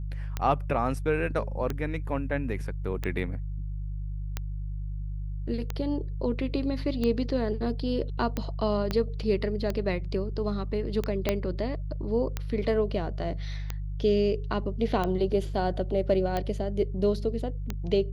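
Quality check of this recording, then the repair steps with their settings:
hum 50 Hz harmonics 3 -33 dBFS
tick 45 rpm -16 dBFS
8.91 pop -15 dBFS
11.29 pop -10 dBFS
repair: de-click; de-hum 50 Hz, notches 3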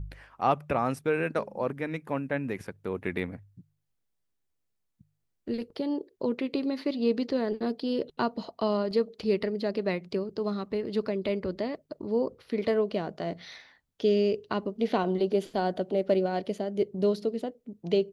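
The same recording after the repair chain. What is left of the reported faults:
8.91 pop
11.29 pop

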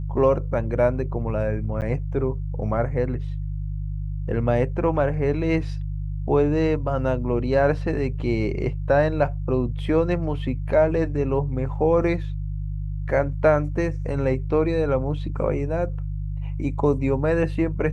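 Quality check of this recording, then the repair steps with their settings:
hum 50 Hz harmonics 3 -28 dBFS
1.81–1.82 gap 9 ms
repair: de-hum 50 Hz, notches 3; interpolate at 1.81, 9 ms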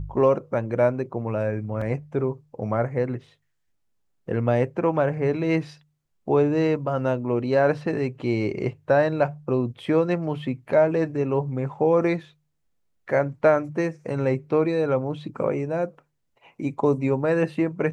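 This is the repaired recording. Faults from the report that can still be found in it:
none

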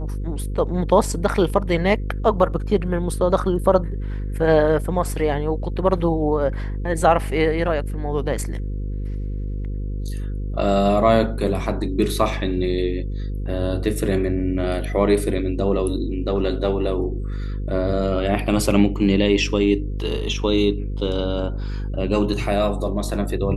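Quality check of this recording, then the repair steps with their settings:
buzz 50 Hz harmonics 10 -26 dBFS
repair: de-hum 50 Hz, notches 10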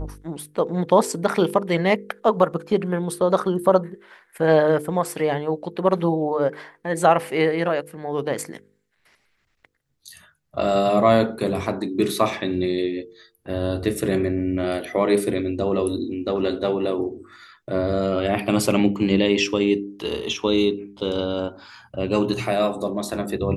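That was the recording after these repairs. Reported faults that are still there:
none

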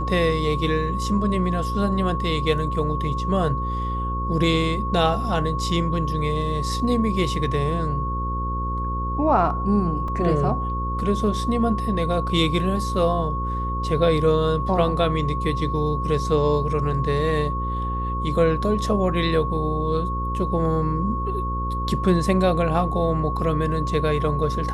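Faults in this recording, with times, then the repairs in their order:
buzz 60 Hz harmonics 9 -27 dBFS
tone 1100 Hz -27 dBFS
10.08 gap 2.8 ms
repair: de-hum 60 Hz, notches 9; notch 1100 Hz, Q 30; interpolate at 10.08, 2.8 ms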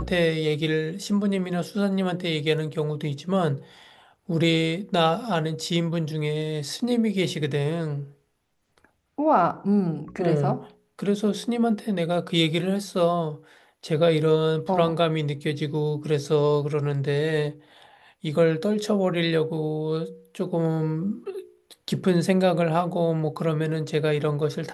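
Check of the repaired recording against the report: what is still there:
none

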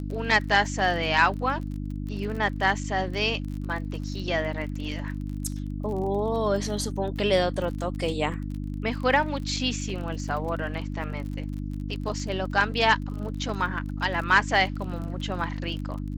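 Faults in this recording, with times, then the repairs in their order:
crackle 31/s -34 dBFS
hum 50 Hz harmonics 6 -32 dBFS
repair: de-click; de-hum 50 Hz, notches 6

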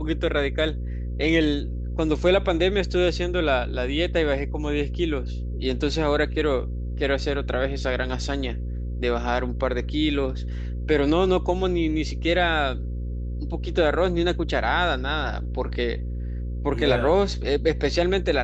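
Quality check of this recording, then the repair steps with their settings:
buzz 60 Hz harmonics 9 -29 dBFS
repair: de-hum 60 Hz, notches 9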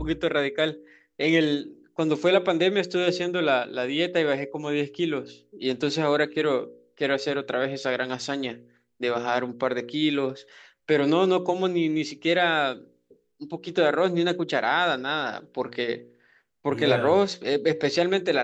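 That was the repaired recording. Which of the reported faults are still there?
none

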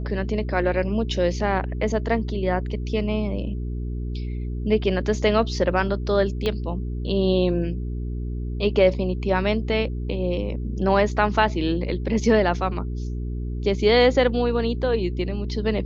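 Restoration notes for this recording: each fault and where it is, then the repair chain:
hum 60 Hz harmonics 7 -28 dBFS
6.46 pop -13 dBFS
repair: de-click; de-hum 60 Hz, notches 7

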